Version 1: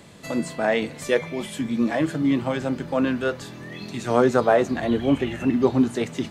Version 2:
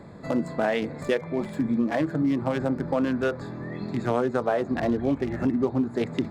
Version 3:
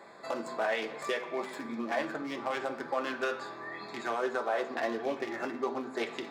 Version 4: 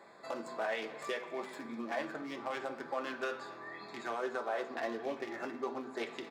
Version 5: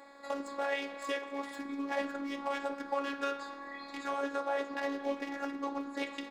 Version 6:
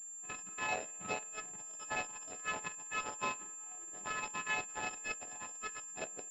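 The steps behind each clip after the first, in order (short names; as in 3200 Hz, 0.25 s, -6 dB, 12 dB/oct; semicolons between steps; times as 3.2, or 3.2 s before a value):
Wiener smoothing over 15 samples; compressor 6:1, threshold -25 dBFS, peak gain reduction 12 dB; gain +4 dB
HPF 640 Hz 12 dB/oct; limiter -21.5 dBFS, peak gain reduction 7 dB; on a send at -2 dB: reverb RT60 0.65 s, pre-delay 3 ms
echo 0.256 s -21 dB; gain -5 dB
robotiser 280 Hz; gain +5 dB
spectrum mirrored in octaves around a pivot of 1200 Hz; added harmonics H 7 -18 dB, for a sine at -22.5 dBFS; pulse-width modulation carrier 7300 Hz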